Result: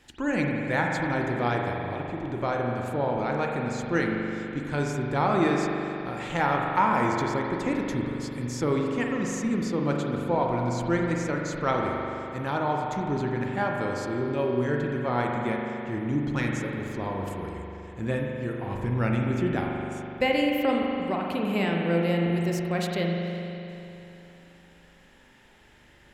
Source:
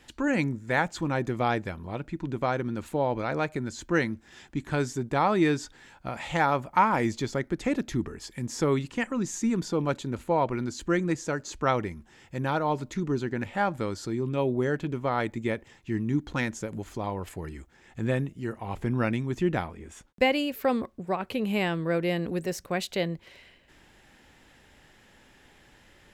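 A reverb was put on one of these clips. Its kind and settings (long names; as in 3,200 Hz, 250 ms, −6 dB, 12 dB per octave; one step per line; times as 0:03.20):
spring reverb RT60 3.1 s, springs 41 ms, chirp 50 ms, DRR −0.5 dB
level −2 dB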